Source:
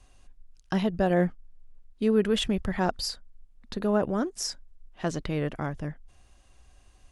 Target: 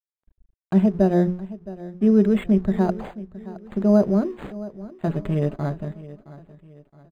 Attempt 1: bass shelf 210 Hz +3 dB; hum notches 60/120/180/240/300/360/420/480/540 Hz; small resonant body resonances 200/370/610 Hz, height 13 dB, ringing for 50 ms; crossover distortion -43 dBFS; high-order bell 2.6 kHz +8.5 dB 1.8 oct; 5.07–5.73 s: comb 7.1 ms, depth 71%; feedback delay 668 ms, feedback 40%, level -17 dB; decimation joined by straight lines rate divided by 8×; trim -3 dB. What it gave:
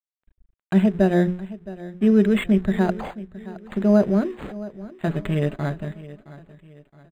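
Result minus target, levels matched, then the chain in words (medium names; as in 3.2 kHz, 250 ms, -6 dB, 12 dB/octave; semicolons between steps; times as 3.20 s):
2 kHz band +7.5 dB
bass shelf 210 Hz +3 dB; hum notches 60/120/180/240/300/360/420/480/540 Hz; small resonant body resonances 200/370/610 Hz, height 13 dB, ringing for 50 ms; crossover distortion -43 dBFS; 5.07–5.73 s: comb 7.1 ms, depth 71%; feedback delay 668 ms, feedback 40%, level -17 dB; decimation joined by straight lines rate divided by 8×; trim -3 dB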